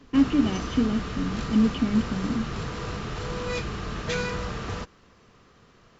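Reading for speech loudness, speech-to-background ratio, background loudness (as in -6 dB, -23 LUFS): -25.5 LUFS, 7.0 dB, -32.5 LUFS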